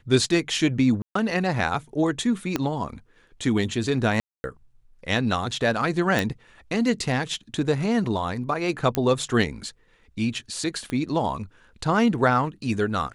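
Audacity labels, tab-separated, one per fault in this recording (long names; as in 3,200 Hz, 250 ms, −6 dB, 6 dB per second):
1.020000	1.150000	drop-out 134 ms
2.560000	2.560000	click −9 dBFS
4.200000	4.440000	drop-out 240 ms
6.190000	6.190000	click
8.950000	8.950000	click −8 dBFS
10.900000	10.900000	click −18 dBFS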